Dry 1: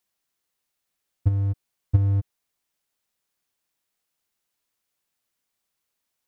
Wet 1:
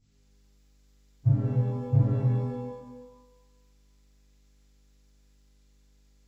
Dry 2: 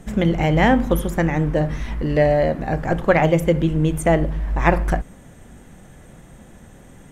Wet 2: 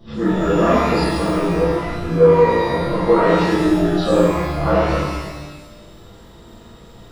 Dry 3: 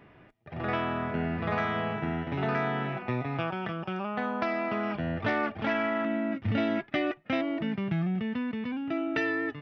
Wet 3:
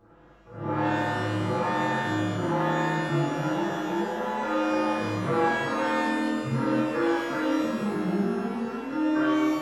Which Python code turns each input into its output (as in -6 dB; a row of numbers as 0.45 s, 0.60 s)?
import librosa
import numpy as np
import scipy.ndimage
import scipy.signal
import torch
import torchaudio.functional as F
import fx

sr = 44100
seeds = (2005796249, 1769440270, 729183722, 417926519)

y = fx.partial_stretch(x, sr, pct=77)
y = y + 0.42 * np.pad(y, (int(5.9 * sr / 1000.0), 0))[:len(y)]
y = fx.add_hum(y, sr, base_hz=50, snr_db=32)
y = fx.rev_shimmer(y, sr, seeds[0], rt60_s=1.1, semitones=12, shimmer_db=-8, drr_db=-10.0)
y = y * 10.0 ** (-6.5 / 20.0)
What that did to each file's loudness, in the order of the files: -2.0 LU, +2.5 LU, +4.0 LU